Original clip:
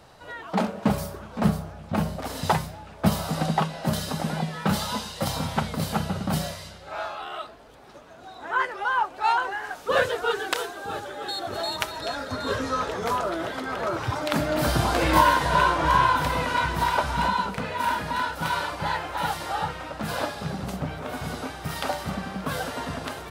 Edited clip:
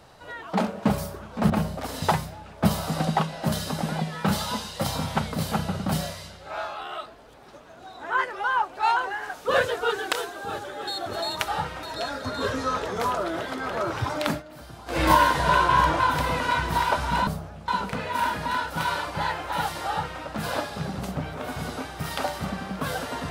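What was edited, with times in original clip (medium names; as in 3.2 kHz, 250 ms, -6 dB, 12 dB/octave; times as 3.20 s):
1.50–1.91 s: move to 17.33 s
14.33–15.08 s: dip -20.5 dB, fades 0.16 s
15.75–16.06 s: reverse
19.52–19.87 s: copy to 11.89 s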